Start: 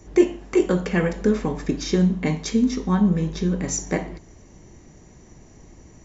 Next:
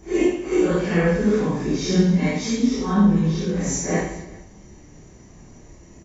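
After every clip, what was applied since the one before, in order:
random phases in long frames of 200 ms
on a send: reverse bouncing-ball delay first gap 30 ms, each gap 1.5×, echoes 5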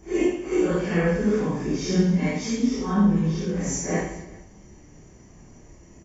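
notch filter 3,900 Hz, Q 6.2
level −3 dB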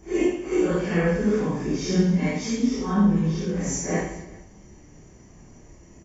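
no processing that can be heard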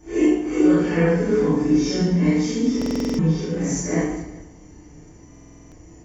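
feedback delay network reverb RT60 0.53 s, low-frequency decay 1.25×, high-frequency decay 0.6×, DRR −2.5 dB
buffer that repeats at 0:02.77/0:05.30, samples 2,048, times 8
level −2 dB

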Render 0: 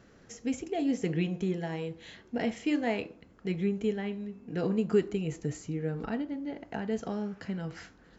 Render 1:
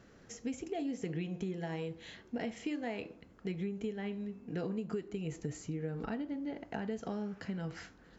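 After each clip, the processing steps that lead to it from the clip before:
downward compressor 10 to 1, threshold −32 dBFS, peak gain reduction 13 dB
level −1.5 dB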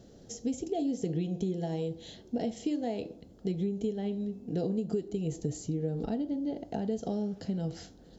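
flat-topped bell 1,600 Hz −15 dB
level +6 dB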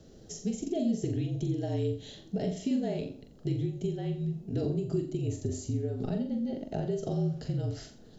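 frequency shifter −45 Hz
flutter between parallel walls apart 7.4 metres, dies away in 0.39 s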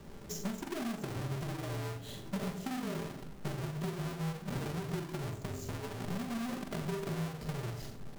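each half-wave held at its own peak
downward compressor 10 to 1, threshold −35 dBFS, peak gain reduction 13 dB
rectangular room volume 2,400 cubic metres, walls furnished, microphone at 1.2 metres
level −2 dB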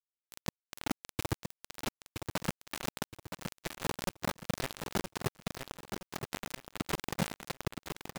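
cochlear-implant simulation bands 12
bit reduction 5 bits
repeating echo 969 ms, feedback 36%, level −6.5 dB
level +1.5 dB

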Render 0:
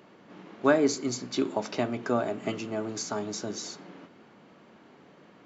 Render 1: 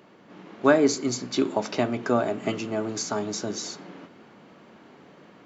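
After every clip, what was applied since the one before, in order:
automatic gain control gain up to 3 dB
level +1 dB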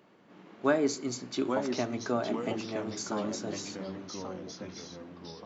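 delay with pitch and tempo change per echo 751 ms, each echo −2 semitones, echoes 3, each echo −6 dB
level −7.5 dB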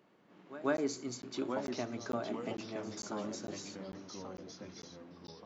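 echo ahead of the sound 141 ms −15.5 dB
regular buffer underruns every 0.45 s, samples 512, zero, from 0:00.77
level −6.5 dB

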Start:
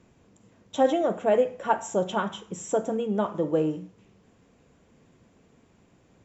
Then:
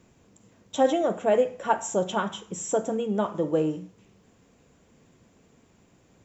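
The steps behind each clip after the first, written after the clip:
high-shelf EQ 6,000 Hz +8.5 dB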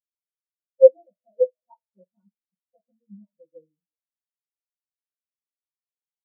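notch filter 440 Hz, Q 12
convolution reverb, pre-delay 3 ms, DRR −8 dB
every bin expanded away from the loudest bin 4 to 1
level −3.5 dB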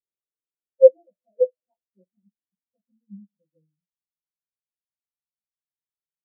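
elliptic low-pass filter 740 Hz
low-pass filter sweep 460 Hz → 160 Hz, 0:01.35–0:03.66
level −4 dB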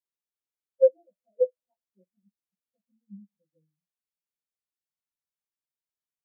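downward compressor, threshold −10 dBFS, peak gain reduction 6 dB
level −3.5 dB

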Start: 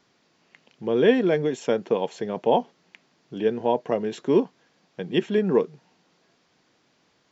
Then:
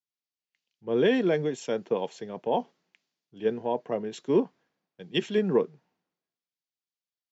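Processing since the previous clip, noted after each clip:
brickwall limiter −12.5 dBFS, peak gain reduction 6.5 dB
multiband upward and downward expander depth 100%
level −4 dB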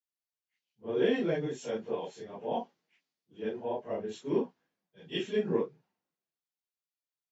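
random phases in long frames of 100 ms
level −5.5 dB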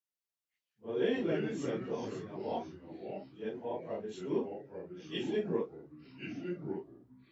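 delay with pitch and tempo change per echo 104 ms, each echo −3 semitones, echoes 3, each echo −6 dB
level −4 dB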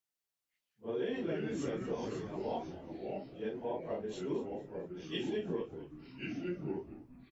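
downward compressor 5 to 1, threshold −35 dBFS, peak gain reduction 9 dB
echo with shifted repeats 226 ms, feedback 40%, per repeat −74 Hz, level −15 dB
level +2 dB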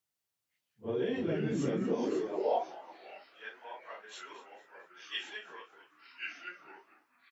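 high-pass filter sweep 94 Hz → 1,400 Hz, 0:01.32–0:03.15
level +2.5 dB

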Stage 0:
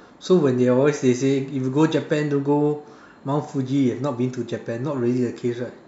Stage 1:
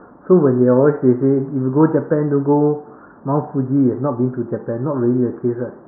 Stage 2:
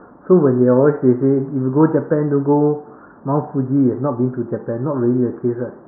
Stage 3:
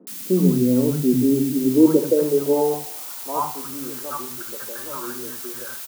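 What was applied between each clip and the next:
Butterworth low-pass 1,500 Hz 48 dB per octave; level +5 dB
no processing that can be heard
band-pass filter sweep 200 Hz → 1,500 Hz, 0:01.04–0:03.94; background noise blue −38 dBFS; three-band delay without the direct sound mids, highs, lows 70/100 ms, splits 220/710 Hz; level +4 dB

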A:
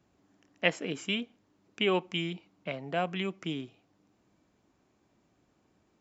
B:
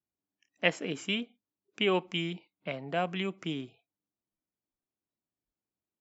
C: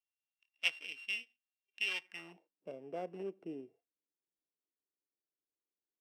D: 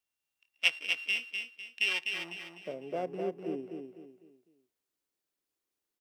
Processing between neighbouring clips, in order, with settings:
noise reduction from a noise print of the clip's start 27 dB
samples sorted by size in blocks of 16 samples; band-pass filter sweep 2,800 Hz → 430 Hz, 0:02.00–0:02.51; level −2.5 dB
repeating echo 251 ms, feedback 36%, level −5.5 dB; level +6.5 dB

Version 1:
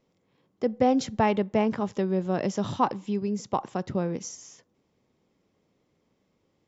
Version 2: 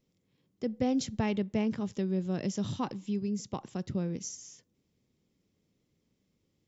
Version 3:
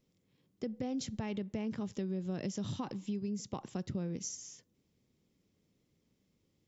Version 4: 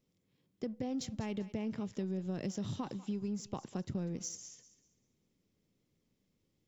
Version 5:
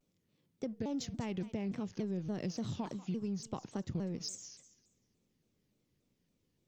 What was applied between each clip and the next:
parametric band 890 Hz −14 dB 2.5 octaves
brickwall limiter −24 dBFS, peak gain reduction 7 dB; downward compressor 4 to 1, threshold −34 dBFS, peak gain reduction 6.5 dB
in parallel at −8 dB: slack as between gear wheels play −38.5 dBFS; on the sum: feedback echo with a high-pass in the loop 196 ms, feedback 29%, high-pass 820 Hz, level −14 dB; level −3 dB
pitch modulation by a square or saw wave saw down 3.5 Hz, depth 250 cents

